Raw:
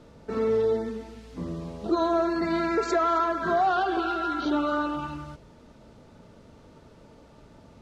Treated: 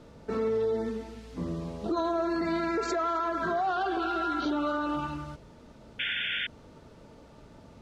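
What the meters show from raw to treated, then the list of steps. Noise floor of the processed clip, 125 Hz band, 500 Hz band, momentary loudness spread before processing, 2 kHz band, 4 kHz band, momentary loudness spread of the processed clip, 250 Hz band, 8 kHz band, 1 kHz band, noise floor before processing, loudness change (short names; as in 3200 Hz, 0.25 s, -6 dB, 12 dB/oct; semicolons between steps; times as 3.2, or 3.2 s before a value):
-53 dBFS, -1.0 dB, -4.0 dB, 13 LU, 0.0 dB, +5.0 dB, 9 LU, -3.0 dB, n/a, -4.0 dB, -53 dBFS, -4.0 dB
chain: painted sound noise, 5.99–6.47, 1400–3600 Hz -30 dBFS; limiter -22 dBFS, peak gain reduction 7.5 dB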